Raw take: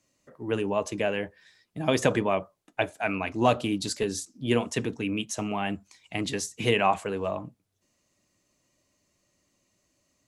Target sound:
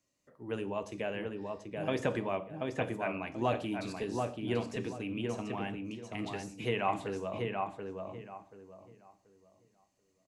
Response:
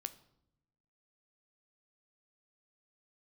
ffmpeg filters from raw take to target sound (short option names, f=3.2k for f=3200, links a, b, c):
-filter_complex "[0:a]asplit=2[a][b];[b]adelay=733,lowpass=f=1.9k:p=1,volume=-3dB,asplit=2[c][d];[d]adelay=733,lowpass=f=1.9k:p=1,volume=0.27,asplit=2[e][f];[f]adelay=733,lowpass=f=1.9k:p=1,volume=0.27,asplit=2[g][h];[h]adelay=733,lowpass=f=1.9k:p=1,volume=0.27[i];[a][c][e][g][i]amix=inputs=5:normalize=0[j];[1:a]atrim=start_sample=2205,afade=t=out:st=0.2:d=0.01,atrim=end_sample=9261[k];[j][k]afir=irnorm=-1:irlink=0,acrossover=split=3200[l][m];[m]acompressor=threshold=-45dB:ratio=4:attack=1:release=60[n];[l][n]amix=inputs=2:normalize=0,volume=-6dB"